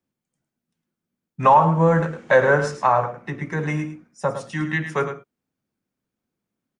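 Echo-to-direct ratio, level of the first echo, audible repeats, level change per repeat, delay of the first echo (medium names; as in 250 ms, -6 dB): -10.5 dB, -10.5 dB, 1, no regular repeats, 107 ms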